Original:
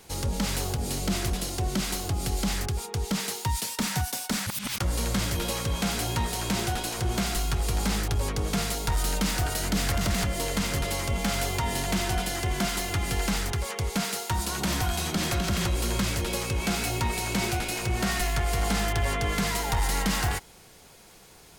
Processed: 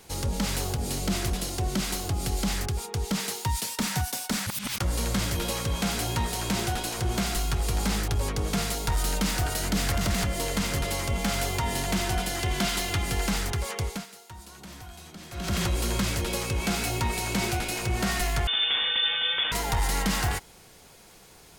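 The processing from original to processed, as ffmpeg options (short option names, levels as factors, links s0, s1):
-filter_complex "[0:a]asettb=1/sr,asplit=3[s0][s1][s2];[s0]atrim=end=12.394[s3];[s1]atrim=start=12.39:end=13.02,asetpts=PTS-STARTPTS,afade=t=in:d=0.004:c=qsin,afade=t=out:st=0.626:d=0.004:c=qsin,equalizer=f=3400:t=o:w=1.2:g=4[s4];[s2]atrim=start=13.016[s5];[s3][s4]acrossfade=d=0.004:c1=hsin:c2=qsin[s6];[s6][s5]acrossfade=d=0.004:c1=qsin:c2=hsin,asettb=1/sr,asplit=3[s7][s8][s9];[s7]atrim=end=18.474[s10];[s8]atrim=start=18.47:end=19.52,asetpts=PTS-STARTPTS,afade=t=in:d=0.004:c=qsin,afade=t=out:st=1.046:d=0.004:c=qsin,lowpass=f=3100:t=q:w=0.5098,lowpass=f=3100:t=q:w=0.6013,lowpass=f=3100:t=q:w=0.9,lowpass=f=3100:t=q:w=2.563,afreqshift=-3600[s11];[s9]atrim=start=19.516[s12];[s10][s11]acrossfade=d=0.004:c1=hsin:c2=qsin[s13];[s13][s12]acrossfade=d=0.004:c1=qsin:c2=hsin,asplit=3[s14][s15][s16];[s14]atrim=end=14.06,asetpts=PTS-STARTPTS,afade=t=out:st=13.82:d=0.24:silence=0.149624[s17];[s15]atrim=start=14.06:end=15.31,asetpts=PTS-STARTPTS,volume=0.15[s18];[s16]atrim=start=15.31,asetpts=PTS-STARTPTS,afade=t=in:d=0.24:silence=0.149624[s19];[s17][s18][s19]concat=n=3:v=0:a=1"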